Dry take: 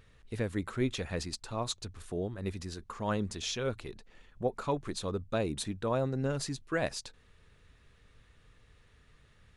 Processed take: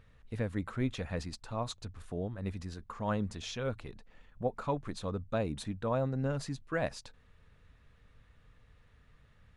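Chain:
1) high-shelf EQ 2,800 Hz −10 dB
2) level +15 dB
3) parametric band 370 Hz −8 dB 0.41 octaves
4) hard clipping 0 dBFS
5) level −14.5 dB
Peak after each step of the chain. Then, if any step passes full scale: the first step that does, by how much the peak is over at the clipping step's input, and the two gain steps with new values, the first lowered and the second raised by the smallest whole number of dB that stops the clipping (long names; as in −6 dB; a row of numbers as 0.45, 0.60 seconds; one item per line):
−18.5, −3.5, −5.0, −5.0, −19.5 dBFS
no step passes full scale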